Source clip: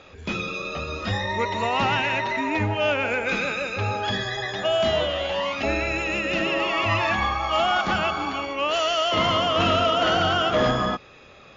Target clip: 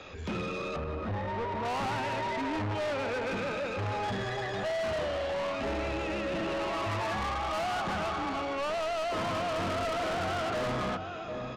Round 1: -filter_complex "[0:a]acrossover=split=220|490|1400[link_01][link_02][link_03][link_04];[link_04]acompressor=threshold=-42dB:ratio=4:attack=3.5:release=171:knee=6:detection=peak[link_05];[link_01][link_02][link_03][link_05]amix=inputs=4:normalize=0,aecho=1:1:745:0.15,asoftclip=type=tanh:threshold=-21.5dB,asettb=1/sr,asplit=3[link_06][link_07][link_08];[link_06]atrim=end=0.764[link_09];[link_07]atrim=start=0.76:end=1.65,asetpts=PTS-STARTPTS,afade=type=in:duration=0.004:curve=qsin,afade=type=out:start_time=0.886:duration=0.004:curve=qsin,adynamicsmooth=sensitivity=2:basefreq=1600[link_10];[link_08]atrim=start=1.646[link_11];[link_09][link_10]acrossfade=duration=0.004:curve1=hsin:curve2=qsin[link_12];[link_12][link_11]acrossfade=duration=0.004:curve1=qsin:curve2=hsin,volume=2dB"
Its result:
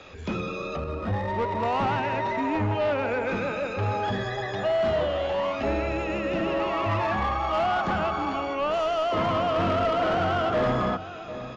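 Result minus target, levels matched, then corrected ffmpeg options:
soft clipping: distortion −8 dB
-filter_complex "[0:a]acrossover=split=220|490|1400[link_01][link_02][link_03][link_04];[link_04]acompressor=threshold=-42dB:ratio=4:attack=3.5:release=171:knee=6:detection=peak[link_05];[link_01][link_02][link_03][link_05]amix=inputs=4:normalize=0,aecho=1:1:745:0.15,asoftclip=type=tanh:threshold=-32dB,asettb=1/sr,asplit=3[link_06][link_07][link_08];[link_06]atrim=end=0.764[link_09];[link_07]atrim=start=0.76:end=1.65,asetpts=PTS-STARTPTS,afade=type=in:duration=0.004:curve=qsin,afade=type=out:start_time=0.886:duration=0.004:curve=qsin,adynamicsmooth=sensitivity=2:basefreq=1600[link_10];[link_08]atrim=start=1.646[link_11];[link_09][link_10]acrossfade=duration=0.004:curve1=hsin:curve2=qsin[link_12];[link_12][link_11]acrossfade=duration=0.004:curve1=qsin:curve2=hsin,volume=2dB"

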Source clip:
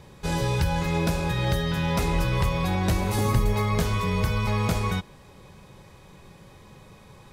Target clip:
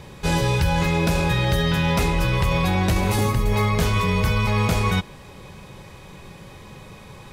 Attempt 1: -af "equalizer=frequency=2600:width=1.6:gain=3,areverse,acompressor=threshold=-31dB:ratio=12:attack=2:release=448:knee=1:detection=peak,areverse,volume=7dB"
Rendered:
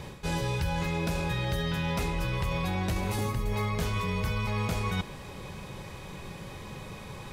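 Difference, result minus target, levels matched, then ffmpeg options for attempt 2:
downward compressor: peak gain reduction +9.5 dB
-af "equalizer=frequency=2600:width=1.6:gain=3,areverse,acompressor=threshold=-20.5dB:ratio=12:attack=2:release=448:knee=1:detection=peak,areverse,volume=7dB"

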